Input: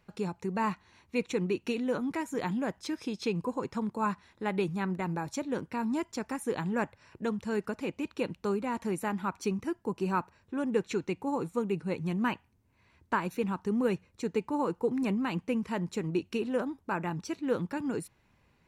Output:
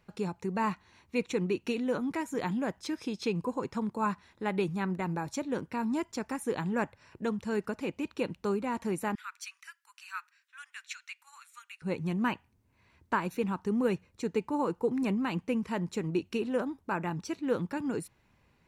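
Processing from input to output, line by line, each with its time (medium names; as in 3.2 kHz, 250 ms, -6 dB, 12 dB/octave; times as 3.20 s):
9.15–11.82 s: steep high-pass 1.4 kHz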